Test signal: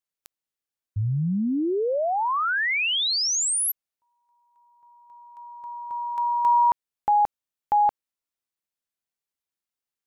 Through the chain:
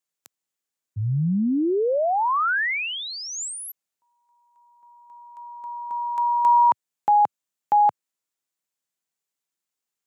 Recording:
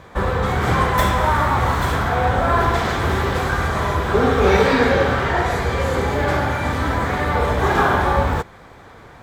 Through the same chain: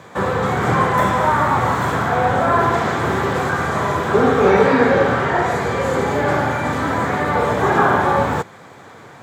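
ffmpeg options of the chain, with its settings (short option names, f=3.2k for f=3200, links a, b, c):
-filter_complex "[0:a]acrossover=split=2100[a][b];[b]acompressor=threshold=-39dB:ratio=6:attack=2.9:release=24[c];[a][c]amix=inputs=2:normalize=0,highpass=f=110:w=0.5412,highpass=f=110:w=1.3066,equalizer=f=7.2k:t=o:w=0.41:g=6,volume=2.5dB"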